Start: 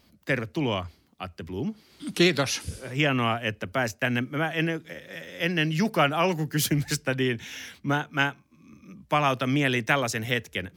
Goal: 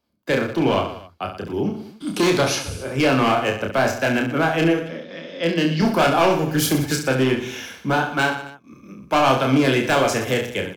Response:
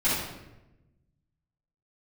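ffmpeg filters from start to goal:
-filter_complex "[0:a]agate=range=-20dB:threshold=-52dB:ratio=16:detection=peak,asettb=1/sr,asplit=3[a][b][c];[a]atrim=end=4.824[d];[b]atrim=start=4.82:end=5.82,asetpts=PTS-STARTPTS,afade=t=in:d=0.004:c=qsin,afade=t=out:st=0.996:d=0.004:c=qsin,highpass=160,equalizer=f=240:t=q:w=4:g=7,equalizer=f=390:t=q:w=4:g=-5,equalizer=f=800:t=q:w=4:g=-7,equalizer=f=1.5k:t=q:w=4:g=-6,equalizer=f=2.5k:t=q:w=4:g=-5,equalizer=f=4.6k:t=q:w=4:g=9,lowpass=f=4.8k:w=0.5412,lowpass=f=4.8k:w=1.3066[e];[c]atrim=start=5.816[f];[d][e]acrossfade=d=0.004:c1=hsin:c2=qsin[g];[g][f]acrossfade=d=0.004:c1=qsin:c2=hsin,acrossover=split=280|1500[h][i][j];[i]acontrast=74[k];[h][k][j]amix=inputs=3:normalize=0,asoftclip=type=hard:threshold=-17dB,bandreject=f=1.9k:w=8,asplit=2[l][m];[m]aecho=0:1:30|69|119.7|185.6|271.3:0.631|0.398|0.251|0.158|0.1[n];[l][n]amix=inputs=2:normalize=0,volume=2.5dB"

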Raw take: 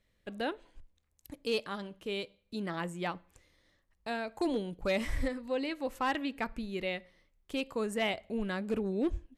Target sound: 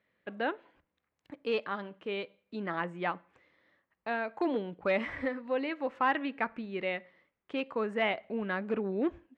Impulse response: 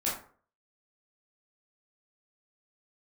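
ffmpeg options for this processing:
-af "highpass=170,lowpass=2.2k,equalizer=f=1.7k:w=0.49:g=6"

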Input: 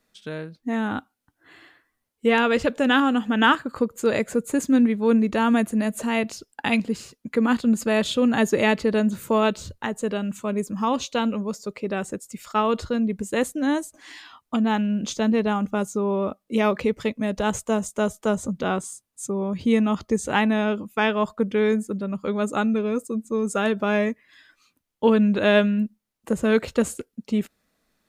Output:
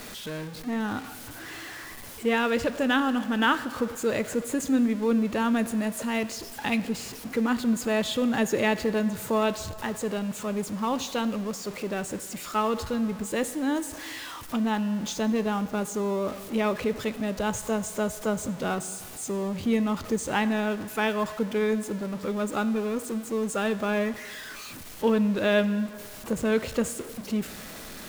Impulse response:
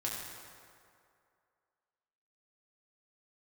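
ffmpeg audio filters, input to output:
-filter_complex "[0:a]aeval=exprs='val(0)+0.5*0.0335*sgn(val(0))':c=same,asplit=2[a][b];[1:a]atrim=start_sample=2205[c];[b][c]afir=irnorm=-1:irlink=0,volume=-13dB[d];[a][d]amix=inputs=2:normalize=0,volume=-7dB"

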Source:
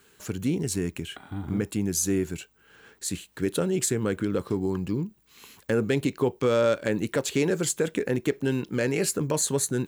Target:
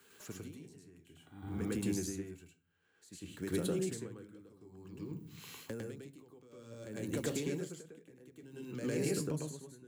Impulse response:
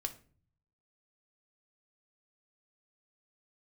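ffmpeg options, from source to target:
-filter_complex "[0:a]highpass=f=130:p=1,acrossover=split=230|550|5300[a][b][c][d];[a]acompressor=threshold=-34dB:ratio=4[e];[b]acompressor=threshold=-37dB:ratio=4[f];[c]acompressor=threshold=-45dB:ratio=4[g];[d]acompressor=threshold=-44dB:ratio=4[h];[e][f][g][h]amix=inputs=4:normalize=0,asplit=2[i][j];[1:a]atrim=start_sample=2205,adelay=104[k];[j][k]afir=irnorm=-1:irlink=0,volume=3.5dB[l];[i][l]amix=inputs=2:normalize=0,aeval=exprs='val(0)*pow(10,-24*(0.5-0.5*cos(2*PI*0.55*n/s))/20)':c=same,volume=-5dB"

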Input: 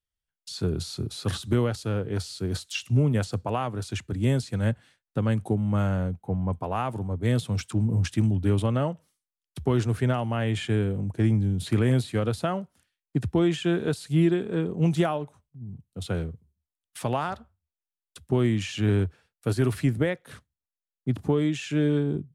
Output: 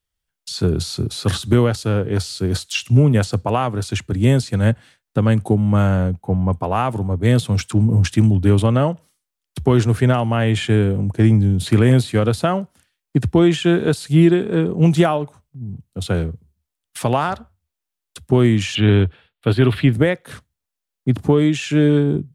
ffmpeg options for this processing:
-filter_complex "[0:a]asettb=1/sr,asplit=3[a][b][c];[a]atrim=end=18.754[d];[b]atrim=start=18.75:end=19.93,asetpts=PTS-STARTPTS,afade=t=in:d=0.004:c=qsin,afade=t=out:st=1.176:d=0.004:c=qsin,highshelf=f=4.6k:t=q:w=3:g=-10.5[e];[c]atrim=start=19.926[f];[d][e]acrossfade=d=0.004:c1=hsin:c2=qsin[g];[g][f]acrossfade=d=0.004:c1=qsin:c2=hsin,volume=9dB"

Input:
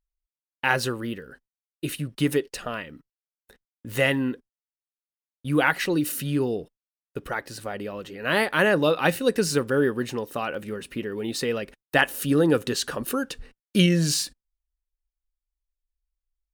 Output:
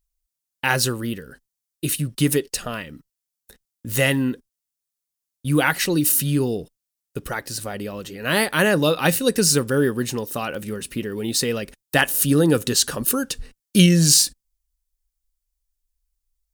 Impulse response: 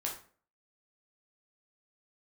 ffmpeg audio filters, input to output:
-af "bass=f=250:g=6,treble=f=4k:g=12,volume=1dB"

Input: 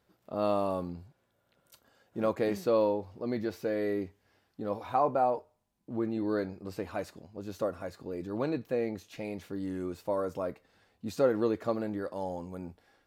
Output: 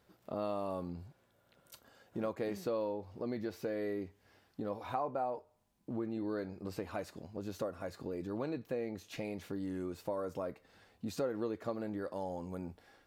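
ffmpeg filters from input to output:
-af "acompressor=threshold=-42dB:ratio=2.5,volume=3dB"

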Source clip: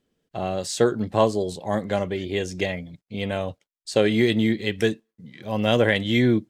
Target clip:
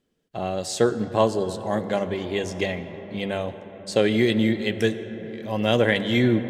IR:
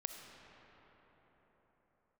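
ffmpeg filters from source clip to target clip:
-filter_complex "[0:a]bandreject=f=50:t=h:w=6,bandreject=f=100:t=h:w=6,asplit=2[a][b];[1:a]atrim=start_sample=2205,asetrate=29547,aresample=44100[c];[b][c]afir=irnorm=-1:irlink=0,volume=-3.5dB[d];[a][d]amix=inputs=2:normalize=0,volume=-4.5dB"

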